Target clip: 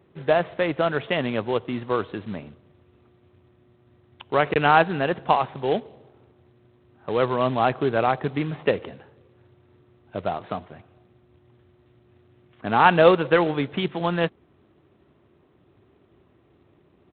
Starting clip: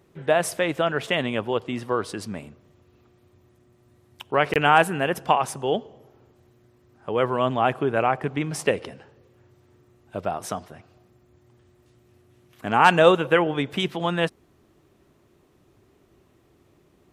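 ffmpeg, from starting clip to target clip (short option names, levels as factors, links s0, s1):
-af "highpass=f=57:w=0.5412,highpass=f=57:w=1.3066,aemphasis=mode=reproduction:type=75fm,aresample=8000,acrusher=bits=4:mode=log:mix=0:aa=0.000001,aresample=44100"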